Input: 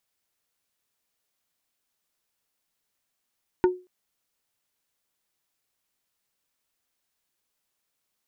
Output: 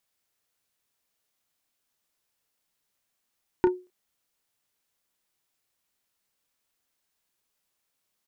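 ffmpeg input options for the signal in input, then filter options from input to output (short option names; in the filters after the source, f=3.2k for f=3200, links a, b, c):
-f lavfi -i "aevalsrc='0.224*pow(10,-3*t/0.29)*sin(2*PI*364*t)+0.1*pow(10,-3*t/0.097)*sin(2*PI*910*t)+0.0447*pow(10,-3*t/0.055)*sin(2*PI*1456*t)+0.02*pow(10,-3*t/0.042)*sin(2*PI*1820*t)+0.00891*pow(10,-3*t/0.031)*sin(2*PI*2366*t)':d=0.23:s=44100"
-filter_complex "[0:a]asplit=2[a][b];[b]adelay=31,volume=-9.5dB[c];[a][c]amix=inputs=2:normalize=0"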